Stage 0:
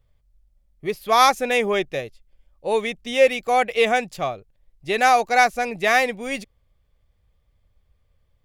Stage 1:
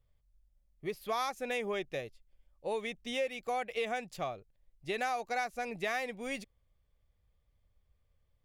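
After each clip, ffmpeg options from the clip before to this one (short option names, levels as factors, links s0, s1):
-af "acompressor=threshold=0.0708:ratio=4,volume=0.355"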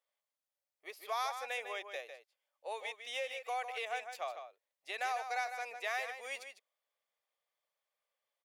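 -filter_complex "[0:a]highpass=f=590:w=0.5412,highpass=f=590:w=1.3066,asplit=2[s0][s1];[s1]adelay=151.6,volume=0.398,highshelf=f=4000:g=-3.41[s2];[s0][s2]amix=inputs=2:normalize=0,volume=0.794"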